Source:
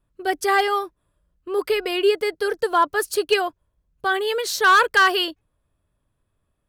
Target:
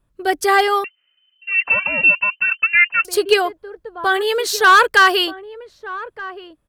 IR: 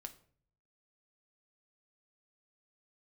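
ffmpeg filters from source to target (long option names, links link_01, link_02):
-filter_complex "[0:a]asplit=2[link_01][link_02];[link_02]adelay=1224,volume=-15dB,highshelf=frequency=4000:gain=-27.6[link_03];[link_01][link_03]amix=inputs=2:normalize=0,asettb=1/sr,asplit=3[link_04][link_05][link_06];[link_04]atrim=end=0.844[link_07];[link_05]atrim=start=0.84:end=3.05,asetpts=PTS-STARTPTS,afade=type=in:duration=0.004:curve=qsin,afade=type=out:start_time=2.206:duration=0.004:curve=qsin,lowpass=frequency=2600:width_type=q:width=0.5098,lowpass=frequency=2600:width_type=q:width=0.6013,lowpass=frequency=2600:width_type=q:width=0.9,lowpass=frequency=2600:width_type=q:width=2.563,afreqshift=-3100[link_08];[link_06]atrim=start=3.046[link_09];[link_07][link_08]acrossfade=duration=0.004:curve1=hsin:curve2=qsin[link_10];[link_10][link_09]acrossfade=duration=0.004:curve1=qsin:curve2=hsin,volume=4.5dB"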